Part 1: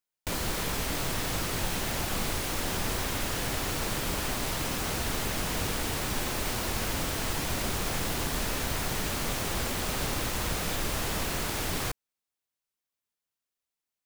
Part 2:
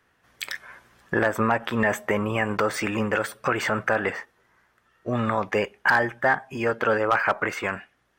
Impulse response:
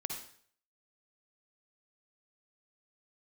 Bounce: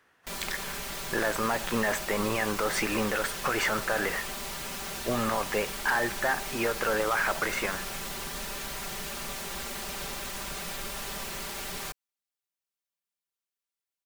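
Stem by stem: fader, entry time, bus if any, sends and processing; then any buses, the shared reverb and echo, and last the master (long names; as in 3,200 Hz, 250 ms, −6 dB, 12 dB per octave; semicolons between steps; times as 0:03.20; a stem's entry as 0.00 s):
−6.0 dB, 0.00 s, no send, low-shelf EQ 440 Hz −7 dB; comb filter 5.1 ms, depth 86%
+1.0 dB, 0.00 s, no send, low-shelf EQ 170 Hz −10.5 dB; brickwall limiter −19.5 dBFS, peak gain reduction 9 dB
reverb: not used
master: no processing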